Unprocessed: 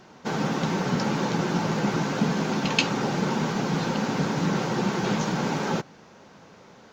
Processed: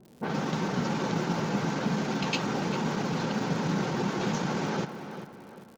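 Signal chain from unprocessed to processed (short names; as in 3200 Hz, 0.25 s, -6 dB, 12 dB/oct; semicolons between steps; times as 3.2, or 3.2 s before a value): low-pass opened by the level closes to 370 Hz, open at -21 dBFS; in parallel at -2 dB: compressor, threshold -32 dBFS, peak gain reduction 15 dB; on the sum: crackle 180/s -38 dBFS; tempo 1.2×; tape echo 0.393 s, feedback 44%, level -9 dB, low-pass 3400 Hz; gain -6 dB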